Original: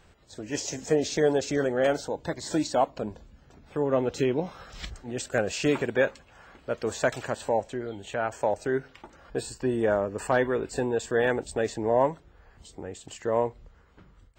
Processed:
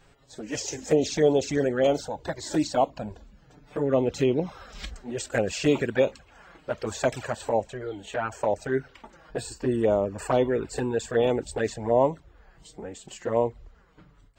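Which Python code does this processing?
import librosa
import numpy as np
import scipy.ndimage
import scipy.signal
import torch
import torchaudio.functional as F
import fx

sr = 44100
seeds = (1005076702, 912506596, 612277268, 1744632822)

y = fx.env_flanger(x, sr, rest_ms=7.7, full_db=-20.5)
y = y * 10.0 ** (3.5 / 20.0)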